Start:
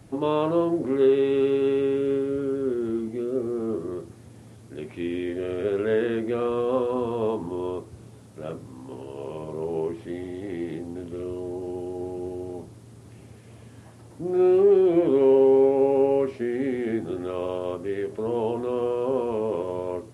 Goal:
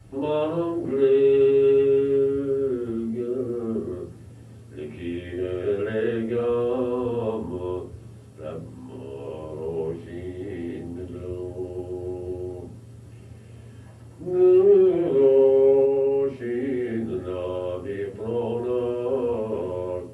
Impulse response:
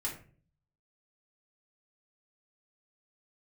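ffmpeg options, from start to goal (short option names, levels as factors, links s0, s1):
-filter_complex "[1:a]atrim=start_sample=2205,asetrate=66150,aresample=44100[s0];[0:a][s0]afir=irnorm=-1:irlink=0,asettb=1/sr,asplit=3[s1][s2][s3];[s1]atrim=end=15.854[s4];[s2]atrim=start=15.85:end=18.57,asetpts=PTS-STARTPTS,afade=t=in:d=0.004:c=qsin,afade=t=out:st=2.716:d=0.004:c=qsin,acompressor=threshold=0.0794:ratio=2[s5];[s3]atrim=start=18.566[s6];[s4][s5]acrossfade=d=0.004:c1=hsin:c2=qsin[s7];[s7][s6]acrossfade=d=0.004:c1=qsin:c2=hsin"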